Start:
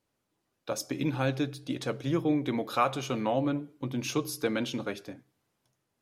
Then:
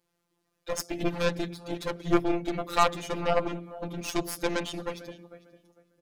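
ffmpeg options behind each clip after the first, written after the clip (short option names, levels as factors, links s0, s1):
-filter_complex "[0:a]afftfilt=real='hypot(re,im)*cos(PI*b)':imag='0':win_size=1024:overlap=0.75,asplit=2[s0][s1];[s1]adelay=451,lowpass=f=1700:p=1,volume=0.178,asplit=2[s2][s3];[s3]adelay=451,lowpass=f=1700:p=1,volume=0.24,asplit=2[s4][s5];[s5]adelay=451,lowpass=f=1700:p=1,volume=0.24[s6];[s0][s2][s4][s6]amix=inputs=4:normalize=0,aeval=exprs='0.224*(cos(1*acos(clip(val(0)/0.224,-1,1)))-cos(1*PI/2))+0.0355*(cos(8*acos(clip(val(0)/0.224,-1,1)))-cos(8*PI/2))':c=same,volume=1.88"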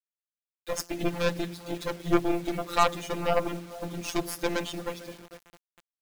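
-af "acrusher=bits=7:mix=0:aa=0.000001"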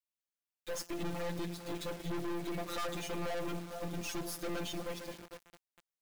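-af "aeval=exprs='(tanh(70.8*val(0)+0.65)-tanh(0.65))/70.8':c=same,volume=1.12"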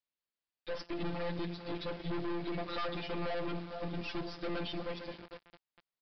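-af "aresample=11025,aresample=44100,volume=1.12"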